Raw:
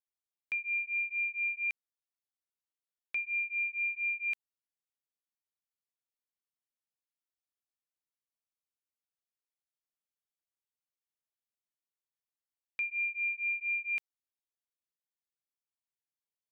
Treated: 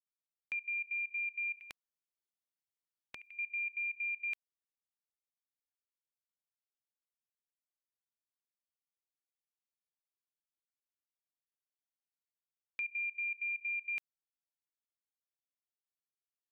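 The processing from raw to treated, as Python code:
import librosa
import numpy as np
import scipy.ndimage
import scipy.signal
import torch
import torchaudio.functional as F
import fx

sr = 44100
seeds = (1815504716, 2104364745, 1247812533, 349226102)

y = fx.level_steps(x, sr, step_db=18)
y = fx.spectral_comp(y, sr, ratio=2.0, at=(1.59, 3.39))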